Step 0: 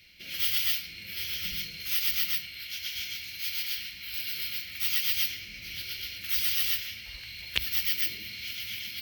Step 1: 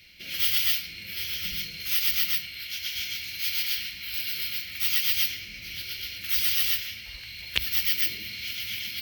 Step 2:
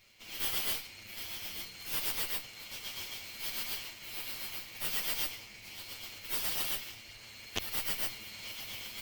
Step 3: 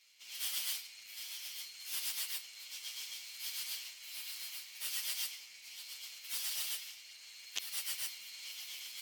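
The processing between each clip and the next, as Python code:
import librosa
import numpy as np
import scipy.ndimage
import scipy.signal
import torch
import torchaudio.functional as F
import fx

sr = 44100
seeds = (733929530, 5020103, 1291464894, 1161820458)

y1 = fx.rider(x, sr, range_db=3, speed_s=2.0)
y1 = y1 * 10.0 ** (2.0 / 20.0)
y2 = fx.lower_of_two(y1, sr, delay_ms=8.9)
y2 = y2 * 10.0 ** (-8.0 / 20.0)
y3 = fx.bandpass_q(y2, sr, hz=7200.0, q=0.6)
y3 = y3 * 10.0 ** (1.0 / 20.0)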